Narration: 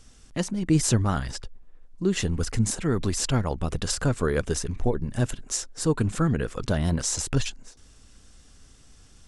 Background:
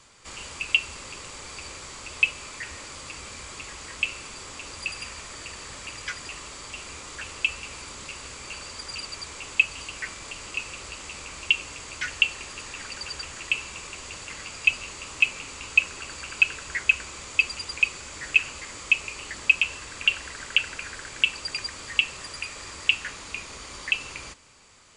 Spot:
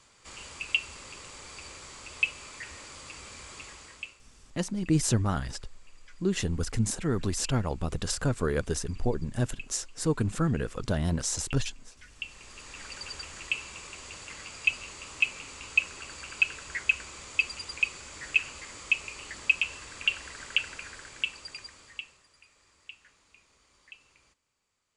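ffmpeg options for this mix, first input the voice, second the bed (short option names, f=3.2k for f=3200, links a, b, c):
-filter_complex "[0:a]adelay=4200,volume=-3.5dB[a];[1:a]volume=13dB,afade=t=out:st=3.62:d=0.58:silence=0.125893,afade=t=in:st=12.11:d=0.83:silence=0.11885,afade=t=out:st=20.62:d=1.62:silence=0.1[b];[a][b]amix=inputs=2:normalize=0"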